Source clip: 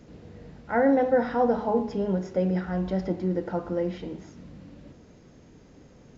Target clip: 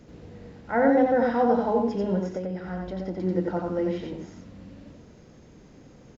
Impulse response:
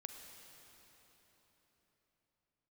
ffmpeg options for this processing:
-filter_complex "[0:a]asettb=1/sr,asplit=3[a][b][c];[a]atrim=end=2.194[d];[b]atrim=start=2.19:end=3.18,asetpts=PTS-STARTPTS,afade=t=in:d=0.004:c=qsin,afade=t=out:st=0.986:d=0.004:c=qsin,acompressor=threshold=-30dB:ratio=6[e];[c]atrim=start=3.176[f];[d][e]acrossfade=d=0.004:c1=hsin:c2=qsin[g];[g][f]acrossfade=d=0.004:c1=qsin:c2=hsin,aecho=1:1:90:0.708"

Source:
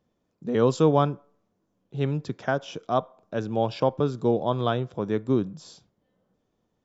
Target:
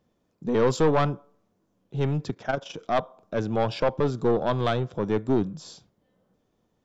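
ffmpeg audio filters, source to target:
-filter_complex "[0:a]asplit=3[a][b][c];[a]afade=t=out:st=2.3:d=0.02[d];[b]tremolo=f=24:d=0.71,afade=t=in:st=2.3:d=0.02,afade=t=out:st=2.77:d=0.02[e];[c]afade=t=in:st=2.77:d=0.02[f];[d][e][f]amix=inputs=3:normalize=0,aeval=exprs='(tanh(8.91*val(0)+0.35)-tanh(0.35))/8.91':c=same,volume=4dB"

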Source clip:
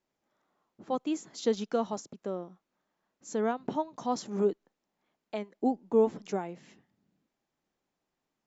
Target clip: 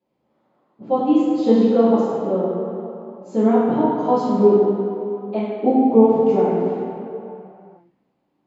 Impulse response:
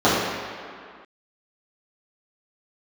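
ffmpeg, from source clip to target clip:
-filter_complex "[1:a]atrim=start_sample=2205,asetrate=31311,aresample=44100[a];[0:a][a]afir=irnorm=-1:irlink=0,volume=-15.5dB"

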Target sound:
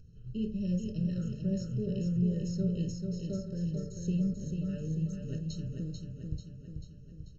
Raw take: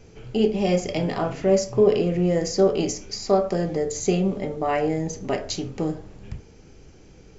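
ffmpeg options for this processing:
-filter_complex "[0:a]firequalizer=gain_entry='entry(160,0);entry(310,-19);entry(730,-22);entry(1600,-22);entry(4200,-8)':delay=0.05:min_phase=1,asplit=2[a][b];[b]acompressor=mode=upward:threshold=-30dB:ratio=2.5,volume=0dB[c];[a][c]amix=inputs=2:normalize=0,agate=range=-7dB:threshold=-31dB:ratio=16:detection=peak,highshelf=f=4.8k:g=-8,asplit=2[d][e];[e]aecho=0:1:440|880|1320|1760|2200|2640|3080:0.562|0.309|0.17|0.0936|0.0515|0.0283|0.0156[f];[d][f]amix=inputs=2:normalize=0,afftfilt=real='re*eq(mod(floor(b*sr/1024/630),2),0)':imag='im*eq(mod(floor(b*sr/1024/630),2),0)':win_size=1024:overlap=0.75,volume=-9dB"

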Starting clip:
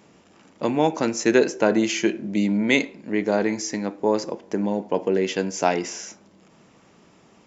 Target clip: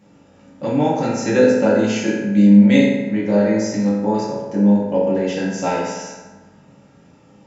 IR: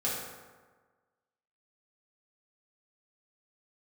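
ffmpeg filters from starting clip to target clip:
-filter_complex "[0:a]lowshelf=f=200:g=12[a];[1:a]atrim=start_sample=2205,asetrate=48510,aresample=44100[b];[a][b]afir=irnorm=-1:irlink=0,volume=-5.5dB"

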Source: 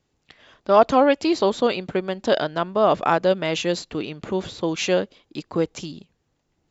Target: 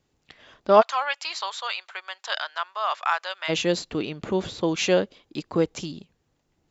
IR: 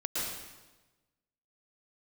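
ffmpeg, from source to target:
-filter_complex "[0:a]asplit=3[a][b][c];[a]afade=t=out:st=0.8:d=0.02[d];[b]highpass=f=1k:w=0.5412,highpass=f=1k:w=1.3066,afade=t=in:st=0.8:d=0.02,afade=t=out:st=3.48:d=0.02[e];[c]afade=t=in:st=3.48:d=0.02[f];[d][e][f]amix=inputs=3:normalize=0"

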